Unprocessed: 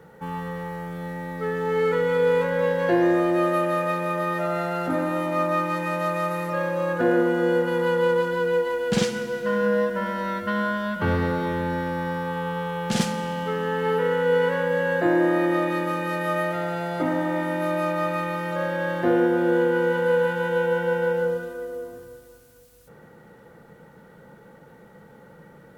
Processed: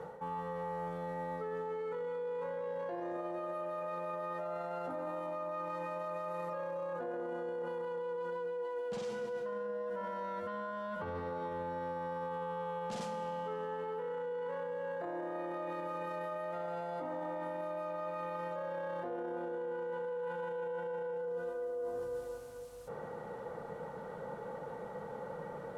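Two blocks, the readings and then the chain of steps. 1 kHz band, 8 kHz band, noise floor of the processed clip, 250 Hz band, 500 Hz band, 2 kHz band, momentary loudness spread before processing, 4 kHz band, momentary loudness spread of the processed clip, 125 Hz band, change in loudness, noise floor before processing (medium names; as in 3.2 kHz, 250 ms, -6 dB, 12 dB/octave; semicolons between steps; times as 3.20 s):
-12.0 dB, under -20 dB, -45 dBFS, -21.0 dB, -14.0 dB, -20.5 dB, 8 LU, -21.0 dB, 5 LU, -19.5 dB, -16.0 dB, -50 dBFS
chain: low-pass 10 kHz 12 dB/octave; high-order bell 730 Hz +9.5 dB; peak limiter -19 dBFS, peak gain reduction 15 dB; reverse; compression 16:1, threshold -35 dBFS, peak gain reduction 13.5 dB; reverse; trim -1 dB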